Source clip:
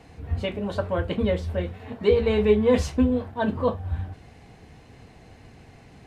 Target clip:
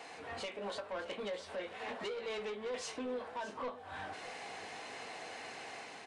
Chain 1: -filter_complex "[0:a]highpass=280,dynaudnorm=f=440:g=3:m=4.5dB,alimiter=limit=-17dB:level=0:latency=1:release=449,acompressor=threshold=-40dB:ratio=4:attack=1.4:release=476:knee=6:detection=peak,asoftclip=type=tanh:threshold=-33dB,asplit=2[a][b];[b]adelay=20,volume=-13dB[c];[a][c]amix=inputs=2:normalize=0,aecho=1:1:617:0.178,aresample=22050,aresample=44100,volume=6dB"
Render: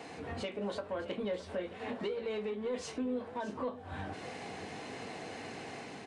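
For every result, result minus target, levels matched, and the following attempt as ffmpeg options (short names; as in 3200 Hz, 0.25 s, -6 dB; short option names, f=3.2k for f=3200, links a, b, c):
soft clip: distortion -12 dB; 250 Hz band +6.0 dB
-filter_complex "[0:a]highpass=280,dynaudnorm=f=440:g=3:m=4.5dB,alimiter=limit=-17dB:level=0:latency=1:release=449,acompressor=threshold=-40dB:ratio=4:attack=1.4:release=476:knee=6:detection=peak,asoftclip=type=tanh:threshold=-41.5dB,asplit=2[a][b];[b]adelay=20,volume=-13dB[c];[a][c]amix=inputs=2:normalize=0,aecho=1:1:617:0.178,aresample=22050,aresample=44100,volume=6dB"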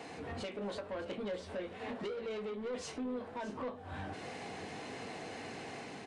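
250 Hz band +6.0 dB
-filter_complex "[0:a]highpass=640,dynaudnorm=f=440:g=3:m=4.5dB,alimiter=limit=-17dB:level=0:latency=1:release=449,acompressor=threshold=-40dB:ratio=4:attack=1.4:release=476:knee=6:detection=peak,asoftclip=type=tanh:threshold=-41.5dB,asplit=2[a][b];[b]adelay=20,volume=-13dB[c];[a][c]amix=inputs=2:normalize=0,aecho=1:1:617:0.178,aresample=22050,aresample=44100,volume=6dB"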